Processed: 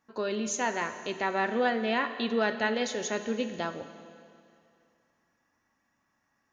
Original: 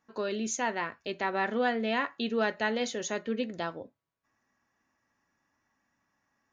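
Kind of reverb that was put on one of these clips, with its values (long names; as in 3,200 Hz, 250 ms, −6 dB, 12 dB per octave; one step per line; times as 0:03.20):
four-comb reverb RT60 2.4 s, combs from 30 ms, DRR 9.5 dB
level +1 dB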